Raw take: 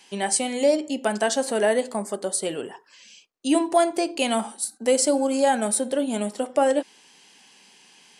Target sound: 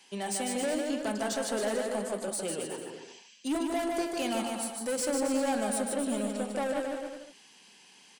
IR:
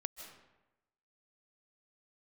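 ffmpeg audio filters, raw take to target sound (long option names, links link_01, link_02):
-filter_complex "[0:a]acrossover=split=210[link_01][link_02];[link_02]asoftclip=type=tanh:threshold=-24dB[link_03];[link_01][link_03]amix=inputs=2:normalize=0,aecho=1:1:150|270|366|442.8|504.2:0.631|0.398|0.251|0.158|0.1,volume=-5.5dB"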